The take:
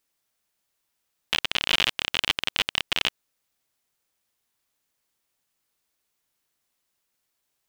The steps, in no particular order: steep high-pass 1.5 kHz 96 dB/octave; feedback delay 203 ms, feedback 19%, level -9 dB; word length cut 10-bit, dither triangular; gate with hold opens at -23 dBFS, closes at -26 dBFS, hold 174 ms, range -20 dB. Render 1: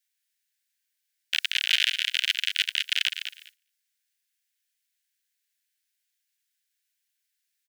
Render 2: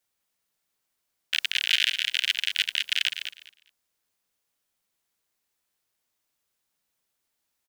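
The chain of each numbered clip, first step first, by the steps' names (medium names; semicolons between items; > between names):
word length cut > feedback delay > gate with hold > steep high-pass; steep high-pass > word length cut > gate with hold > feedback delay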